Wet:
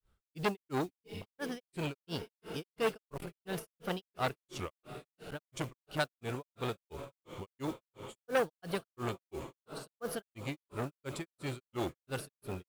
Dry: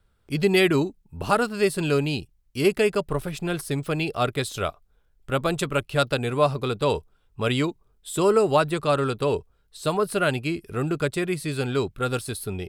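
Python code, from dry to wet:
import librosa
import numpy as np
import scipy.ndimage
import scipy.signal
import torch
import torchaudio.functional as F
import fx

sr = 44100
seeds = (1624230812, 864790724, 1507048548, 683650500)

y = fx.mod_noise(x, sr, seeds[0], snr_db=21)
y = fx.echo_diffused(y, sr, ms=678, feedback_pct=70, wet_db=-15.5)
y = fx.granulator(y, sr, seeds[1], grain_ms=226.0, per_s=2.9, spray_ms=26.0, spread_st=3)
y = fx.transformer_sat(y, sr, knee_hz=1500.0)
y = y * librosa.db_to_amplitude(-5.5)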